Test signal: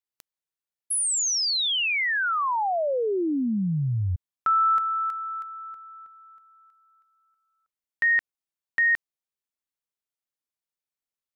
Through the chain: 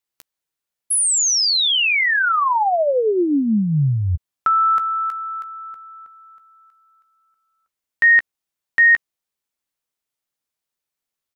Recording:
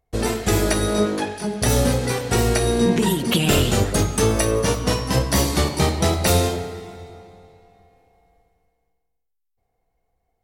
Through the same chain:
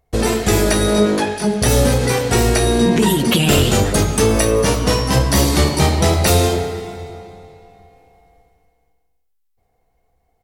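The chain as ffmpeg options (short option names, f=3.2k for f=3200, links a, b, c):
-filter_complex "[0:a]asplit=2[a][b];[b]alimiter=limit=-16dB:level=0:latency=1,volume=2dB[c];[a][c]amix=inputs=2:normalize=0,asplit=2[d][e];[e]adelay=14,volume=-12dB[f];[d][f]amix=inputs=2:normalize=0"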